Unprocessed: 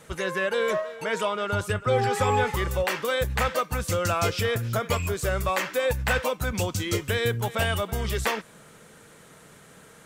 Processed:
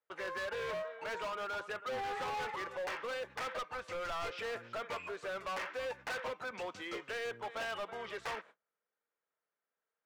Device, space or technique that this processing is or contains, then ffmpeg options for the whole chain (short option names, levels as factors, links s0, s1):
walkie-talkie: -filter_complex "[0:a]highpass=530,lowpass=2300,asoftclip=type=hard:threshold=0.0316,agate=range=0.0251:threshold=0.00355:ratio=16:detection=peak,asplit=3[s0][s1][s2];[s0]afade=t=out:st=3.58:d=0.02[s3];[s1]asubboost=boost=6.5:cutoff=75,afade=t=in:st=3.58:d=0.02,afade=t=out:st=4.31:d=0.02[s4];[s2]afade=t=in:st=4.31:d=0.02[s5];[s3][s4][s5]amix=inputs=3:normalize=0,volume=0.501"